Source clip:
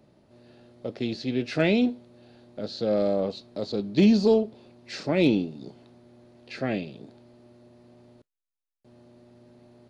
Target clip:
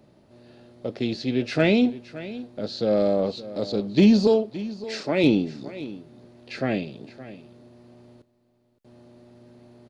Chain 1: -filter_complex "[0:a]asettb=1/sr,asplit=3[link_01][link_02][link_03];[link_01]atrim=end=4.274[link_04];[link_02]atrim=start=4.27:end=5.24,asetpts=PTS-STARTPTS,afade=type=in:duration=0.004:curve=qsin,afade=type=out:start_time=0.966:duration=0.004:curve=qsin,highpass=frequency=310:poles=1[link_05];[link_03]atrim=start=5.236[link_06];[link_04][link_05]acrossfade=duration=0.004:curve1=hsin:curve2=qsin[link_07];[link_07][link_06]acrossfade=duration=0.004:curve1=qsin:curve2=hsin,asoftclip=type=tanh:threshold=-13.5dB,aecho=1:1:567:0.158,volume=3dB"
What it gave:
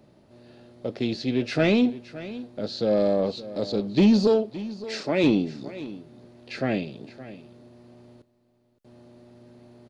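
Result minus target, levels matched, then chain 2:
soft clipping: distortion +18 dB
-filter_complex "[0:a]asettb=1/sr,asplit=3[link_01][link_02][link_03];[link_01]atrim=end=4.274[link_04];[link_02]atrim=start=4.27:end=5.24,asetpts=PTS-STARTPTS,afade=type=in:duration=0.004:curve=qsin,afade=type=out:start_time=0.966:duration=0.004:curve=qsin,highpass=frequency=310:poles=1[link_05];[link_03]atrim=start=5.236[link_06];[link_04][link_05]acrossfade=duration=0.004:curve1=hsin:curve2=qsin[link_07];[link_07][link_06]acrossfade=duration=0.004:curve1=qsin:curve2=hsin,asoftclip=type=tanh:threshold=-3.5dB,aecho=1:1:567:0.158,volume=3dB"

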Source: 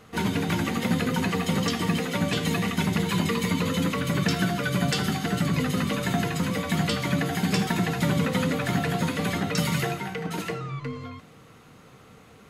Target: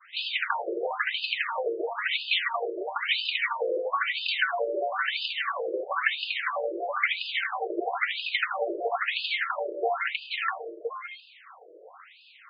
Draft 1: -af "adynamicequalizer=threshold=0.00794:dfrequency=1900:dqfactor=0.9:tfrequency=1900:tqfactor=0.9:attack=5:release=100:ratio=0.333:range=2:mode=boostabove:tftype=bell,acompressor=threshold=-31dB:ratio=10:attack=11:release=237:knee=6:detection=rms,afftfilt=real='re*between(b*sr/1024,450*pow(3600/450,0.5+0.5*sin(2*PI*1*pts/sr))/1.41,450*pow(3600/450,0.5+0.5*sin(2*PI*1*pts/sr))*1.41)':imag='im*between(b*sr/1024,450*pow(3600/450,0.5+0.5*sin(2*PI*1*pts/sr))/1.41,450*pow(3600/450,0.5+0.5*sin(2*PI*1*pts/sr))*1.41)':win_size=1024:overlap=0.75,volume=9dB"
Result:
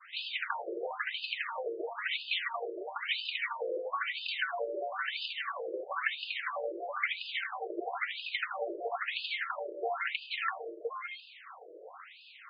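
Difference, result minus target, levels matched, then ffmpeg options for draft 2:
downward compressor: peak gain reduction +8 dB
-af "adynamicequalizer=threshold=0.00794:dfrequency=1900:dqfactor=0.9:tfrequency=1900:tqfactor=0.9:attack=5:release=100:ratio=0.333:range=2:mode=boostabove:tftype=bell,acompressor=threshold=-22dB:ratio=10:attack=11:release=237:knee=6:detection=rms,afftfilt=real='re*between(b*sr/1024,450*pow(3600/450,0.5+0.5*sin(2*PI*1*pts/sr))/1.41,450*pow(3600/450,0.5+0.5*sin(2*PI*1*pts/sr))*1.41)':imag='im*between(b*sr/1024,450*pow(3600/450,0.5+0.5*sin(2*PI*1*pts/sr))/1.41,450*pow(3600/450,0.5+0.5*sin(2*PI*1*pts/sr))*1.41)':win_size=1024:overlap=0.75,volume=9dB"

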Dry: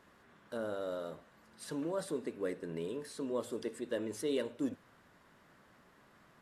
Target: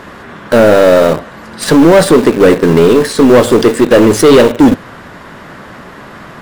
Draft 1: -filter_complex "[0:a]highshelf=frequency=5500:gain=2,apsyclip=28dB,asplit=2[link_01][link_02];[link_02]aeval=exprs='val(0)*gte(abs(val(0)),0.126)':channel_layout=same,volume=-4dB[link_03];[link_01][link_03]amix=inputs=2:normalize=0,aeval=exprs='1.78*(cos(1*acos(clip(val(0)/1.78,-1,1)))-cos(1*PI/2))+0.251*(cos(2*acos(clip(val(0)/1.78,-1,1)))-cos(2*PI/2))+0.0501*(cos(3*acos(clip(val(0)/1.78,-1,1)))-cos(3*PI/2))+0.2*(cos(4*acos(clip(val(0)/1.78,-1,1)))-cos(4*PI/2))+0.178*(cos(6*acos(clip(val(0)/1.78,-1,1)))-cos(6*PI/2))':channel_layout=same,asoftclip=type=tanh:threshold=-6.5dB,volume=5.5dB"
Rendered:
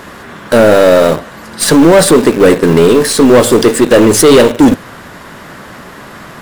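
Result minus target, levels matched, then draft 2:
8,000 Hz band +7.0 dB
-filter_complex "[0:a]highshelf=frequency=5500:gain=-8.5,apsyclip=28dB,asplit=2[link_01][link_02];[link_02]aeval=exprs='val(0)*gte(abs(val(0)),0.126)':channel_layout=same,volume=-4dB[link_03];[link_01][link_03]amix=inputs=2:normalize=0,aeval=exprs='1.78*(cos(1*acos(clip(val(0)/1.78,-1,1)))-cos(1*PI/2))+0.251*(cos(2*acos(clip(val(0)/1.78,-1,1)))-cos(2*PI/2))+0.0501*(cos(3*acos(clip(val(0)/1.78,-1,1)))-cos(3*PI/2))+0.2*(cos(4*acos(clip(val(0)/1.78,-1,1)))-cos(4*PI/2))+0.178*(cos(6*acos(clip(val(0)/1.78,-1,1)))-cos(6*PI/2))':channel_layout=same,asoftclip=type=tanh:threshold=-6.5dB,volume=5.5dB"

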